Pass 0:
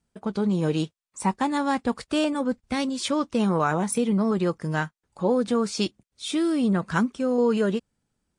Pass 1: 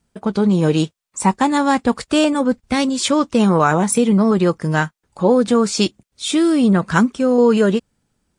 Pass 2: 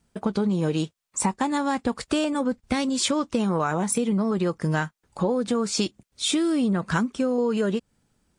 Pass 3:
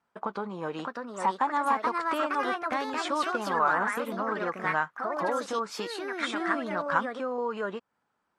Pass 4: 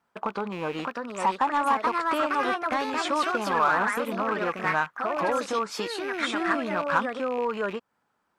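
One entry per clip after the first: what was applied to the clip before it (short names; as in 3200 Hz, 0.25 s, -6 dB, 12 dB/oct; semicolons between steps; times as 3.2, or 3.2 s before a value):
dynamic EQ 7300 Hz, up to +5 dB, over -55 dBFS, Q 4.5; gain +8.5 dB
compressor 6:1, threshold -21 dBFS, peak gain reduction 11.5 dB
band-pass 1100 Hz, Q 1.8; echoes that change speed 0.655 s, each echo +3 st, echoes 2; gain +3.5 dB
rattling part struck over -50 dBFS, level -34 dBFS; in parallel at -6 dB: hard clip -25 dBFS, distortion -10 dB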